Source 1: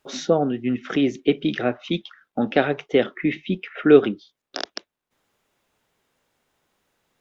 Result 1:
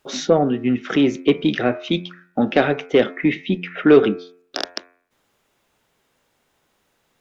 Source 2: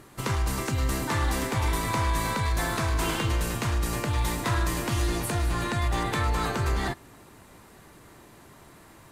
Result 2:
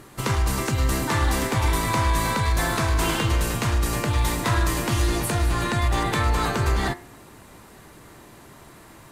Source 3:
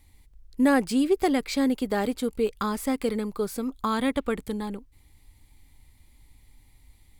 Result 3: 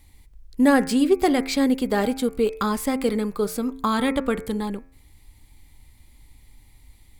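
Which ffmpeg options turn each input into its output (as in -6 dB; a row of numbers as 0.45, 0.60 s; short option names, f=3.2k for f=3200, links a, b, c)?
-af "acontrast=40,bandreject=f=88.58:t=h:w=4,bandreject=f=177.16:t=h:w=4,bandreject=f=265.74:t=h:w=4,bandreject=f=354.32:t=h:w=4,bandreject=f=442.9:t=h:w=4,bandreject=f=531.48:t=h:w=4,bandreject=f=620.06:t=h:w=4,bandreject=f=708.64:t=h:w=4,bandreject=f=797.22:t=h:w=4,bandreject=f=885.8:t=h:w=4,bandreject=f=974.38:t=h:w=4,bandreject=f=1.06296k:t=h:w=4,bandreject=f=1.15154k:t=h:w=4,bandreject=f=1.24012k:t=h:w=4,bandreject=f=1.3287k:t=h:w=4,bandreject=f=1.41728k:t=h:w=4,bandreject=f=1.50586k:t=h:w=4,bandreject=f=1.59444k:t=h:w=4,bandreject=f=1.68302k:t=h:w=4,bandreject=f=1.7716k:t=h:w=4,bandreject=f=1.86018k:t=h:w=4,bandreject=f=1.94876k:t=h:w=4,bandreject=f=2.03734k:t=h:w=4,bandreject=f=2.12592k:t=h:w=4,bandreject=f=2.2145k:t=h:w=4,bandreject=f=2.30308k:t=h:w=4,bandreject=f=2.39166k:t=h:w=4,bandreject=f=2.48024k:t=h:w=4,bandreject=f=2.56882k:t=h:w=4,volume=-1dB"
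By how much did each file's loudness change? +2.5, +4.5, +4.0 LU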